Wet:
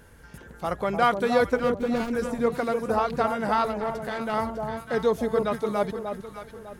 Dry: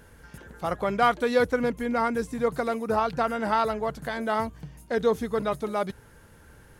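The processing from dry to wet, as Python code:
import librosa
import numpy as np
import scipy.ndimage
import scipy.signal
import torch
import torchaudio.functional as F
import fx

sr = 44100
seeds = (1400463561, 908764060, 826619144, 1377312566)

y = fx.median_filter(x, sr, points=41, at=(1.57, 2.12))
y = fx.echo_alternate(y, sr, ms=301, hz=990.0, feedback_pct=57, wet_db=-4.5)
y = fx.tube_stage(y, sr, drive_db=19.0, bias=0.45, at=(3.65, 4.34))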